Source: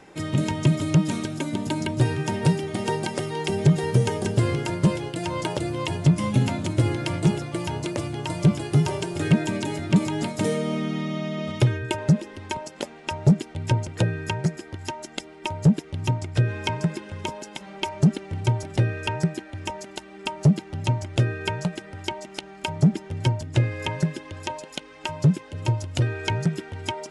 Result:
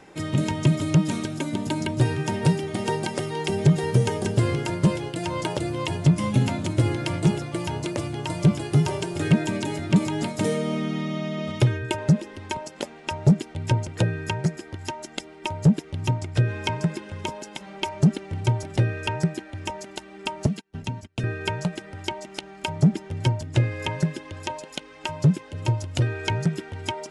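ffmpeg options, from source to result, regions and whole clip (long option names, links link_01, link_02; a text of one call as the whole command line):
ffmpeg -i in.wav -filter_complex "[0:a]asettb=1/sr,asplit=3[link_01][link_02][link_03];[link_01]atrim=end=20.464[link_04];[link_02]atrim=start=20.46:end=21.24,asetpts=PTS-STARTPTS,afade=type=in:duration=0.004:curve=qsin,afade=type=out:start_time=0.776:duration=0.004:curve=qsin,agate=range=-30dB:threshold=-31dB:ratio=16:release=100:detection=peak,aecho=1:1:4.4:0.52,atrim=end_sample=34398,acrossover=split=340|1600[link_05][link_06][link_07];[link_05]acompressor=threshold=-26dB:ratio=4[link_08];[link_06]acompressor=threshold=-42dB:ratio=4[link_09];[link_07]acompressor=threshold=-36dB:ratio=4[link_10];[link_08][link_09][link_10]amix=inputs=3:normalize=0[link_11];[link_03]atrim=start=21.236[link_12];[link_04][link_11]acrossfade=duration=0.004:curve1=hsin:curve2=qsin[link_13];[link_13][link_12]acrossfade=duration=0.004:curve1=qsin:curve2=hsin" out.wav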